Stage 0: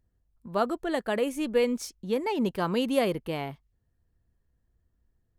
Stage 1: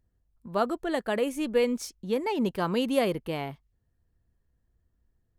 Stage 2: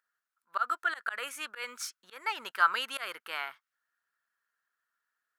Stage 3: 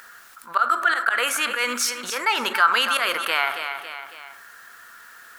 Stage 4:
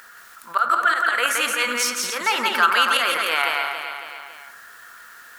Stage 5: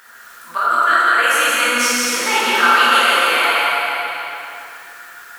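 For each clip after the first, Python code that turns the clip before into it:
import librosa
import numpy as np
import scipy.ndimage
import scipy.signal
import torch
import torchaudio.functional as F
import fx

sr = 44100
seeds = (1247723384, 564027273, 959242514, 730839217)

y1 = x
y2 = fx.auto_swell(y1, sr, attack_ms=147.0)
y2 = fx.highpass_res(y2, sr, hz=1400.0, q=6.1)
y3 = fx.echo_feedback(y2, sr, ms=277, feedback_pct=26, wet_db=-15.0)
y3 = fx.rev_fdn(y3, sr, rt60_s=0.77, lf_ratio=1.25, hf_ratio=0.4, size_ms=25.0, drr_db=12.0)
y3 = fx.env_flatten(y3, sr, amount_pct=50)
y3 = y3 * 10.0 ** (6.0 / 20.0)
y4 = y3 + 10.0 ** (-3.0 / 20.0) * np.pad(y3, (int(171 * sr / 1000.0), 0))[:len(y3)]
y5 = fx.rev_plate(y4, sr, seeds[0], rt60_s=2.5, hf_ratio=0.85, predelay_ms=0, drr_db=-8.0)
y5 = y5 * 10.0 ** (-2.5 / 20.0)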